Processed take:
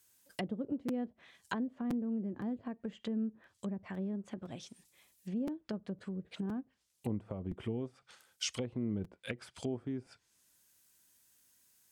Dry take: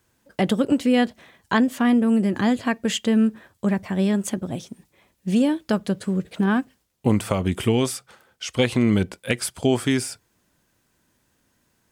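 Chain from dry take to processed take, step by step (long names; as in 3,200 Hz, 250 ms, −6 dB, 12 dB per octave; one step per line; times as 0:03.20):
treble cut that deepens with the level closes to 470 Hz, closed at −19 dBFS
first-order pre-emphasis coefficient 0.9
regular buffer underruns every 0.51 s, samples 256, repeat, from 0:00.37
level +3 dB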